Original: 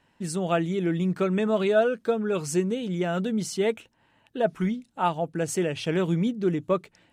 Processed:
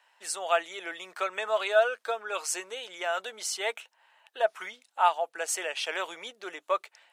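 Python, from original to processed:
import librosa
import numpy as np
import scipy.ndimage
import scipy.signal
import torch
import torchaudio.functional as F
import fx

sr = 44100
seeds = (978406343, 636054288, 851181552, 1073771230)

y = scipy.signal.sosfilt(scipy.signal.butter(4, 680.0, 'highpass', fs=sr, output='sos'), x)
y = y * librosa.db_to_amplitude(3.0)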